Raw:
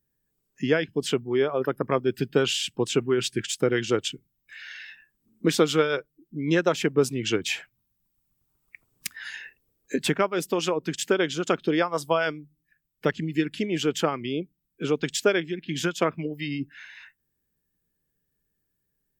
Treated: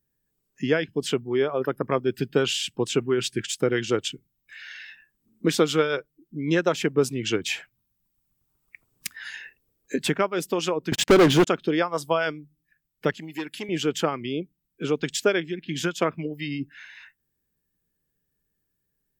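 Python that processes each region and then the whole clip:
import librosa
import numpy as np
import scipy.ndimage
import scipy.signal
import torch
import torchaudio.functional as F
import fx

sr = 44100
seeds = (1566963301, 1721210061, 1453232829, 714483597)

y = fx.chain(x, sr, fx.lowpass(hz=1300.0, slope=6),
    fx.leveller(passes=5), at=(10.92, 11.47))
y = fx.chain(y, sr, fx.highpass(hz=570.0, slope=6),
    fx.peak_eq(hz=13000.0, db=12.5, octaves=0.75),
    fx.transformer_sat(knee_hz=860.0), at=(13.14, 13.69))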